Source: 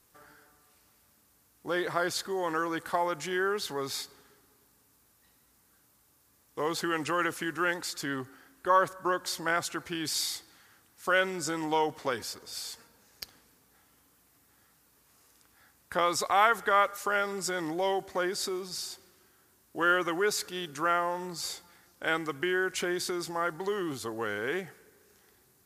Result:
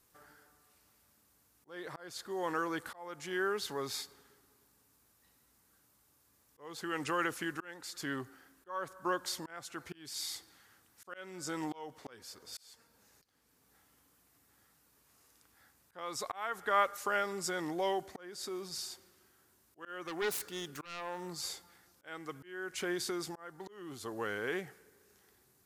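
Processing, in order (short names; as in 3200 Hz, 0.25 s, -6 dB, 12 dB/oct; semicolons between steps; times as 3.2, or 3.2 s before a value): 20.07–21.28 self-modulated delay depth 0.3 ms; auto swell 0.482 s; gain -4 dB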